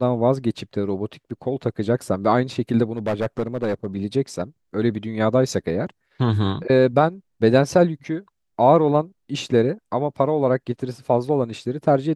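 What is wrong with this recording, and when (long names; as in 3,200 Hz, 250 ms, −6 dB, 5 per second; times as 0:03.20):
0:02.97–0:03.87: clipping −17.5 dBFS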